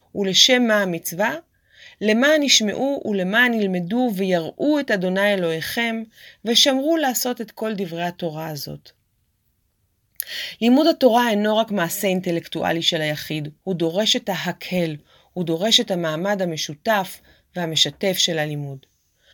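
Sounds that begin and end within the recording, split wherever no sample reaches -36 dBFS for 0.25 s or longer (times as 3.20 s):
1.82–8.88 s
10.20–14.97 s
15.37–17.17 s
17.56–18.83 s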